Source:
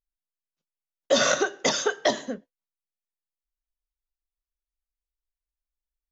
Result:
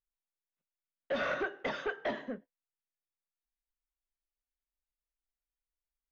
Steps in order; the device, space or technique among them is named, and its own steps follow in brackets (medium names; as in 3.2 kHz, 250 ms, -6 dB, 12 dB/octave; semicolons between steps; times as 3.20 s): overdriven synthesiser ladder filter (saturation -22.5 dBFS, distortion -9 dB; four-pole ladder low-pass 2.9 kHz, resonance 25%)